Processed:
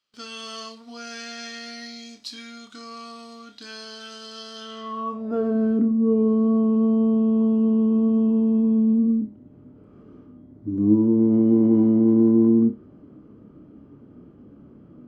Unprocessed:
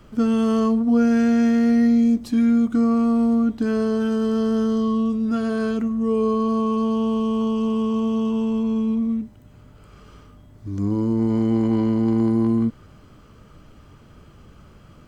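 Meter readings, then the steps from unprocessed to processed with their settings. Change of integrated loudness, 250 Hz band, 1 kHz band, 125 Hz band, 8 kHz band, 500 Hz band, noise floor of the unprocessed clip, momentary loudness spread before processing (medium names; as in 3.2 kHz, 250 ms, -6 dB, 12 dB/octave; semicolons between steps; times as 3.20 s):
+1.0 dB, -1.0 dB, -6.5 dB, -2.5 dB, no reading, -2.0 dB, -49 dBFS, 6 LU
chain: band-pass sweep 4.3 kHz -> 280 Hz, 4.55–5.56 s; gate with hold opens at -55 dBFS; flutter echo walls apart 4.9 m, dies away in 0.22 s; trim +8.5 dB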